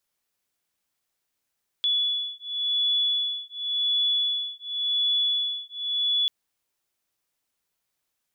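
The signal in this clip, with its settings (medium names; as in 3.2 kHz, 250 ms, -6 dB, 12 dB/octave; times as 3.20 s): beating tones 3.42 kHz, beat 0.91 Hz, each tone -26 dBFS 4.44 s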